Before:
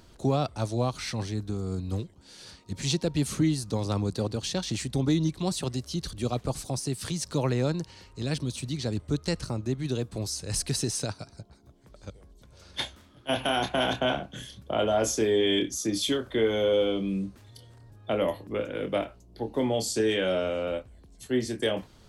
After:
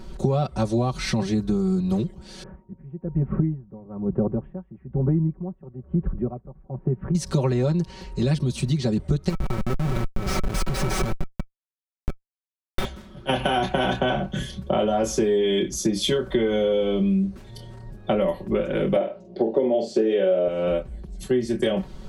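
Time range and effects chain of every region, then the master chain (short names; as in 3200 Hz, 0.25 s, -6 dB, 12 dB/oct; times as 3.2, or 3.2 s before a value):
2.43–7.15 Gaussian blur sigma 6.4 samples + dB-linear tremolo 1.1 Hz, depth 25 dB
9.29–12.85 Schmitt trigger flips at -32.5 dBFS + small resonant body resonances 1300/2300 Hz, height 10 dB, ringing for 60 ms
18.96–20.48 BPF 320–3800 Hz + resonant low shelf 760 Hz +7 dB, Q 1.5 + doubler 45 ms -7 dB
whole clip: tilt -2 dB/oct; comb 5.3 ms, depth 98%; compressor, threshold -26 dBFS; gain +7 dB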